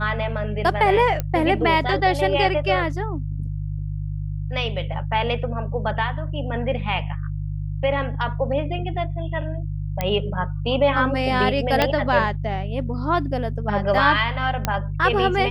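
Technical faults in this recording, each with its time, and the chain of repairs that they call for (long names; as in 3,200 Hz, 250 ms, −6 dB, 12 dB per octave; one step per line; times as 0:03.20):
mains hum 50 Hz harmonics 3 −27 dBFS
0:01.20: click −11 dBFS
0:10.01: click −9 dBFS
0:11.82: click −5 dBFS
0:14.65: click −6 dBFS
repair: click removal
hum removal 50 Hz, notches 3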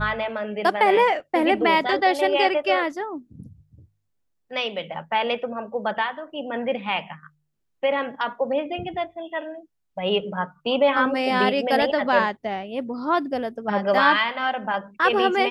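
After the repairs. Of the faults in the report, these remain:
0:01.20: click
0:10.01: click
0:11.82: click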